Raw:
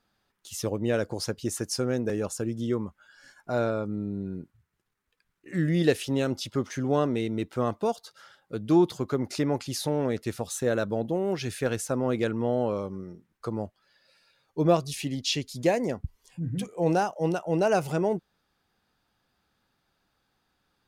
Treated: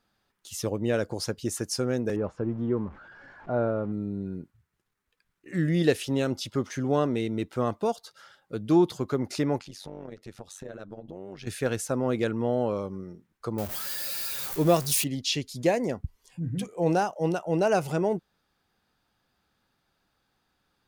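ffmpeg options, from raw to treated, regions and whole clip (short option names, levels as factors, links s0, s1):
-filter_complex "[0:a]asettb=1/sr,asplit=3[s0][s1][s2];[s0]atrim=end=2.164[s3];[s1]atrim=start=2.16:end=3.92,asetpts=PTS-STARTPTS,afade=t=in:d=0.004:c=qsin,afade=t=out:st=1.756:d=0.004:c=qsin,aeval=exprs='val(0)+0.5*0.00944*sgn(val(0))':c=same,lowpass=1300[s4];[s2]atrim=start=3.916[s5];[s3][s4]acrossfade=d=0.004:c1=hsin:c2=qsin[s6];[s6][s5]acrossfade=d=0.004:c1=qsin:c2=hsin,asettb=1/sr,asplit=3[s7][s8][s9];[s7]atrim=end=9.594[s10];[s8]atrim=start=9.59:end=11.47,asetpts=PTS-STARTPTS,afade=t=in:d=0.004:c=qsin,afade=t=out:st=1.876:d=0.004:c=qsin,highshelf=f=7700:g=-11,acompressor=threshold=0.0112:ratio=2.5:attack=3.2:release=140:knee=1:detection=peak,tremolo=f=95:d=0.824[s11];[s9]atrim=start=11.466[s12];[s10][s11]acrossfade=d=0.004:c1=hsin:c2=qsin[s13];[s13][s12]acrossfade=d=0.004:c1=qsin:c2=hsin,asettb=1/sr,asplit=3[s14][s15][s16];[s14]atrim=end=13.584[s17];[s15]atrim=start=13.58:end=15.04,asetpts=PTS-STARTPTS,afade=t=in:d=0.004:c=qsin,afade=t=out:st=1.456:d=0.004:c=qsin,aeval=exprs='val(0)+0.5*0.0158*sgn(val(0))':c=same,aemphasis=mode=production:type=50fm[s18];[s16]atrim=start=15.036[s19];[s17][s18]acrossfade=d=0.004:c1=hsin:c2=qsin[s20];[s20][s19]acrossfade=d=0.004:c1=qsin:c2=hsin"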